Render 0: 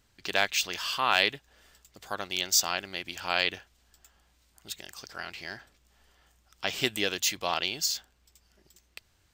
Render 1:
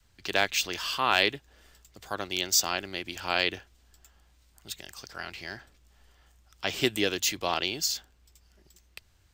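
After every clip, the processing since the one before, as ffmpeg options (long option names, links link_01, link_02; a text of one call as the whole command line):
ffmpeg -i in.wav -filter_complex "[0:a]adynamicequalizer=threshold=0.00398:dfrequency=330:dqfactor=1.4:tfrequency=330:tqfactor=1.4:attack=5:release=100:ratio=0.375:range=3:mode=boostabove:tftype=bell,acrossover=split=110|1800|4900[link_01][link_02][link_03][link_04];[link_01]acontrast=63[link_05];[link_05][link_02][link_03][link_04]amix=inputs=4:normalize=0" out.wav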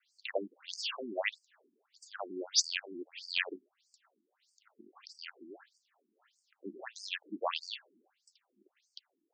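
ffmpeg -i in.wav -af "afftfilt=real='re*between(b*sr/1024,260*pow(6500/260,0.5+0.5*sin(2*PI*1.6*pts/sr))/1.41,260*pow(6500/260,0.5+0.5*sin(2*PI*1.6*pts/sr))*1.41)':imag='im*between(b*sr/1024,260*pow(6500/260,0.5+0.5*sin(2*PI*1.6*pts/sr))/1.41,260*pow(6500/260,0.5+0.5*sin(2*PI*1.6*pts/sr))*1.41)':win_size=1024:overlap=0.75" out.wav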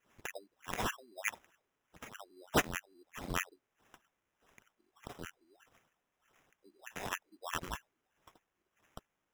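ffmpeg -i in.wav -af "aderivative,acrusher=samples=10:mix=1:aa=0.000001,alimiter=level_in=2dB:limit=-24dB:level=0:latency=1:release=410,volume=-2dB,volume=8dB" out.wav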